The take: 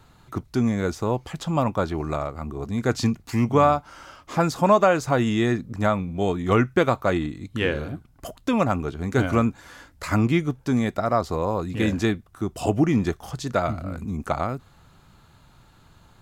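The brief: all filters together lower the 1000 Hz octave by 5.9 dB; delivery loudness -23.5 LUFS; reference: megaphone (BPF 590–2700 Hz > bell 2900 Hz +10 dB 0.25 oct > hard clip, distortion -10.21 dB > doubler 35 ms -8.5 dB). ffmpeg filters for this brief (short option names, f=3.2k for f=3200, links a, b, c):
-filter_complex "[0:a]highpass=590,lowpass=2.7k,equalizer=f=1k:t=o:g=-7,equalizer=f=2.9k:t=o:w=0.25:g=10,asoftclip=type=hard:threshold=-22.5dB,asplit=2[a][b];[b]adelay=35,volume=-8.5dB[c];[a][c]amix=inputs=2:normalize=0,volume=9.5dB"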